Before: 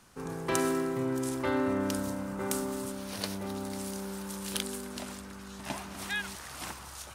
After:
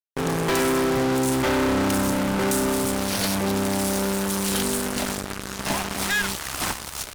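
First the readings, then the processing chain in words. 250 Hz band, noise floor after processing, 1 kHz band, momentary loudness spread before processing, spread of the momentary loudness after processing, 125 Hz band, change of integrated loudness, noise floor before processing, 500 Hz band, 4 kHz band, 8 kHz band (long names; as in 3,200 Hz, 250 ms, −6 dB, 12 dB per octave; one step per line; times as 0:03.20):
+10.0 dB, −36 dBFS, +11.0 dB, 11 LU, 6 LU, +11.5 dB, +10.5 dB, −46 dBFS, +9.5 dB, +12.0 dB, +12.0 dB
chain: fuzz pedal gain 38 dB, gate −43 dBFS
tube saturation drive 19 dB, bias 0.65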